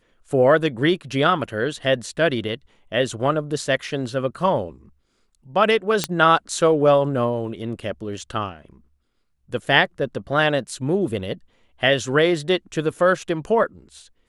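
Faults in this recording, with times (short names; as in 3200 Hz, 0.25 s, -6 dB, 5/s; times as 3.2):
6.04 pop -4 dBFS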